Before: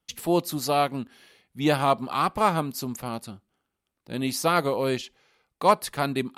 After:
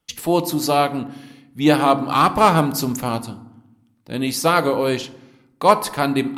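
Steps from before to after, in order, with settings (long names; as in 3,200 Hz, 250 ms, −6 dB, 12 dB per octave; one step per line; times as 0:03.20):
0:02.08–0:03.19: leveller curve on the samples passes 1
feedback delay network reverb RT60 0.9 s, low-frequency decay 1.6×, high-frequency decay 0.5×, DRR 11 dB
level +5.5 dB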